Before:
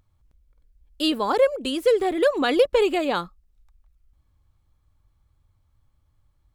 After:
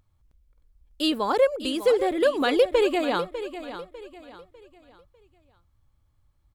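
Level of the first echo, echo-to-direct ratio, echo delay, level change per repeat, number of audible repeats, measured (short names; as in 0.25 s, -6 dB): -12.0 dB, -11.5 dB, 0.599 s, -9.0 dB, 3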